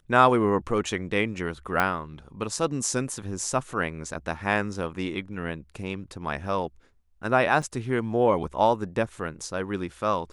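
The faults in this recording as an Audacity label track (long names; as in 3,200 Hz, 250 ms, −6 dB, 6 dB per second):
1.800000	1.800000	click −10 dBFS
7.620000	7.630000	drop-out 6.3 ms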